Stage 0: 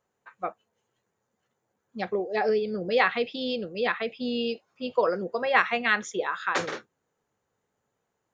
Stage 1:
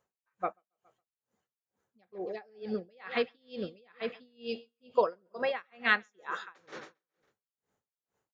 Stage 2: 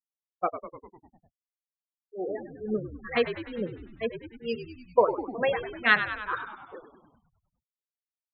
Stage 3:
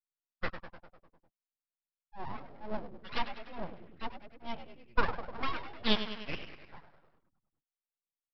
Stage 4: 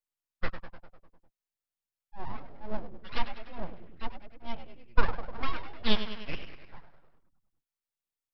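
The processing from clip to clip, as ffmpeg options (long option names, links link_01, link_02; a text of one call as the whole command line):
ffmpeg -i in.wav -af "aecho=1:1:138|276|414|552:0.15|0.0613|0.0252|0.0103,aeval=exprs='val(0)*pow(10,-37*(0.5-0.5*cos(2*PI*2.2*n/s))/20)':channel_layout=same,volume=-1dB" out.wav
ffmpeg -i in.wav -filter_complex "[0:a]afftfilt=real='re*gte(hypot(re,im),0.0224)':imag='im*gte(hypot(re,im),0.0224)':win_size=1024:overlap=0.75,asplit=2[link_01][link_02];[link_02]asplit=8[link_03][link_04][link_05][link_06][link_07][link_08][link_09][link_10];[link_03]adelay=100,afreqshift=-71,volume=-10.5dB[link_11];[link_04]adelay=200,afreqshift=-142,volume=-14.5dB[link_12];[link_05]adelay=300,afreqshift=-213,volume=-18.5dB[link_13];[link_06]adelay=400,afreqshift=-284,volume=-22.5dB[link_14];[link_07]adelay=500,afreqshift=-355,volume=-26.6dB[link_15];[link_08]adelay=600,afreqshift=-426,volume=-30.6dB[link_16];[link_09]adelay=700,afreqshift=-497,volume=-34.6dB[link_17];[link_10]adelay=800,afreqshift=-568,volume=-38.6dB[link_18];[link_11][link_12][link_13][link_14][link_15][link_16][link_17][link_18]amix=inputs=8:normalize=0[link_19];[link_01][link_19]amix=inputs=2:normalize=0,volume=5dB" out.wav
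ffmpeg -i in.wav -af "lowpass=2900,aresample=11025,aeval=exprs='abs(val(0))':channel_layout=same,aresample=44100,volume=-4.5dB" out.wav
ffmpeg -i in.wav -af "lowshelf=frequency=67:gain=10" out.wav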